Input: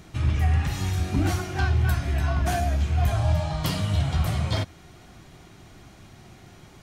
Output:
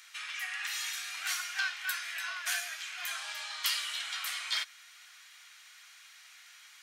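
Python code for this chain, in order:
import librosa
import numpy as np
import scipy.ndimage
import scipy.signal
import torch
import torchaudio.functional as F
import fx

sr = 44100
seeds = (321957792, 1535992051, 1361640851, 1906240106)

y = scipy.signal.sosfilt(scipy.signal.butter(4, 1500.0, 'highpass', fs=sr, output='sos'), x)
y = F.gain(torch.from_numpy(y), 2.5).numpy()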